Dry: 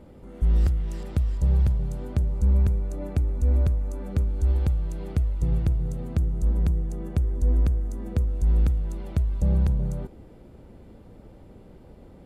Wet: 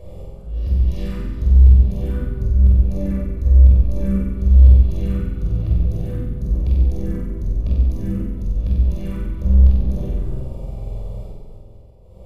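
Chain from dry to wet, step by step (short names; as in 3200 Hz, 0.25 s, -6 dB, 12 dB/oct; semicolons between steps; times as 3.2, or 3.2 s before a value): envelope phaser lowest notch 220 Hz, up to 1500 Hz, full sweep at -25 dBFS; in parallel at -11 dB: wavefolder -25.5 dBFS; on the sum: auto swell 0.614 s; limiter -26 dBFS, peak gain reduction 10.5 dB; flutter echo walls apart 8 m, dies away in 1.1 s; shoebox room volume 2800 m³, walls furnished, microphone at 5.7 m; gain +4 dB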